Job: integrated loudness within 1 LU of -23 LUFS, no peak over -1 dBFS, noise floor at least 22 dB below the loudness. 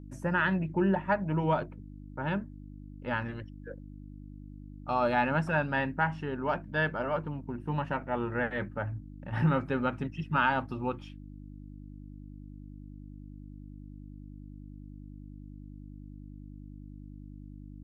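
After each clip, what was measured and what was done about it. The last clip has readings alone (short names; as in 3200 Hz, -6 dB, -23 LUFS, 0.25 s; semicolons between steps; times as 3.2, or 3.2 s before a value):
hum 50 Hz; harmonics up to 300 Hz; hum level -43 dBFS; loudness -31.0 LUFS; peak -14.0 dBFS; loudness target -23.0 LUFS
-> de-hum 50 Hz, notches 6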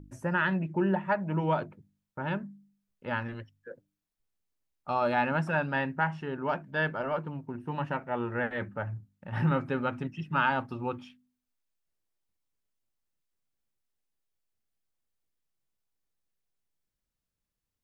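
hum none; loudness -31.0 LUFS; peak -14.0 dBFS; loudness target -23.0 LUFS
-> gain +8 dB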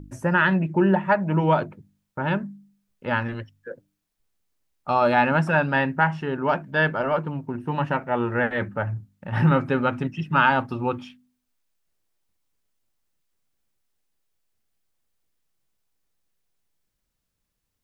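loudness -23.0 LUFS; peak -6.0 dBFS; noise floor -79 dBFS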